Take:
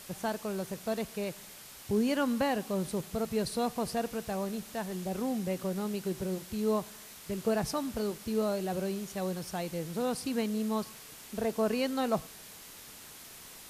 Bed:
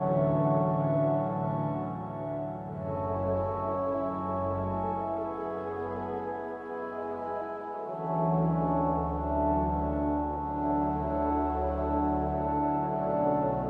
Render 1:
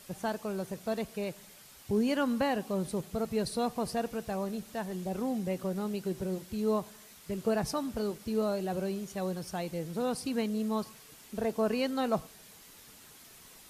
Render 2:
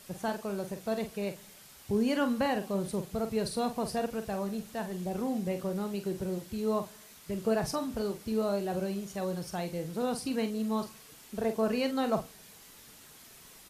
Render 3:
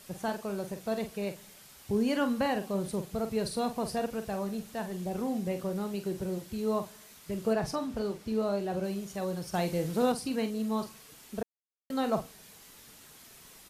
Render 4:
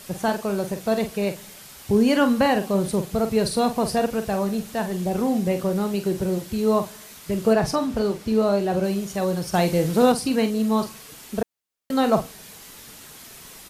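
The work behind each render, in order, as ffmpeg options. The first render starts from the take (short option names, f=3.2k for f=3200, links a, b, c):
-af "afftdn=nr=6:nf=-50"
-filter_complex "[0:a]asplit=2[a][b];[b]adelay=45,volume=-9dB[c];[a][c]amix=inputs=2:normalize=0"
-filter_complex "[0:a]asettb=1/sr,asplit=3[a][b][c];[a]atrim=end=7.534[d];[b]atrim=start=7.53:end=8.84,asetpts=PTS-STARTPTS,afade=t=in:d=0.004:c=qsin,afade=t=out:st=1.306:d=0.004:c=qsin,highshelf=f=7.9k:g=-9[e];[c]atrim=start=8.836[f];[d][e]acrossfade=d=0.004:c1=hsin:c2=qsin[g];[g][f]acrossfade=d=0.004:c1=qsin:c2=hsin,asplit=5[h][i][j][k][l];[h]atrim=end=9.542[m];[i]atrim=start=9.538:end=10.122,asetpts=PTS-STARTPTS,volume=5dB[n];[j]atrim=start=10.118:end=11.43,asetpts=PTS-STARTPTS,afade=t=out:st=1.308:d=0.004:c=hsin[o];[k]atrim=start=11.43:end=11.9,asetpts=PTS-STARTPTS,volume=0[p];[l]atrim=start=11.9,asetpts=PTS-STARTPTS,afade=t=in:d=0.004:c=hsin[q];[m][n]acrossfade=d=0.004:c1=hsin:c2=hsin[r];[o][p][q]concat=n=3:v=0:a=1[s];[r][s]acrossfade=d=0.004:c1=hsin:c2=hsin"
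-af "volume=10dB"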